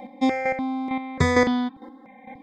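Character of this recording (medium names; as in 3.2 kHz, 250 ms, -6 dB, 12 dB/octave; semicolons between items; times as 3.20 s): chopped level 2.2 Hz, depth 60%, duty 15%; notches that jump at a steady rate 3.4 Hz 390–2100 Hz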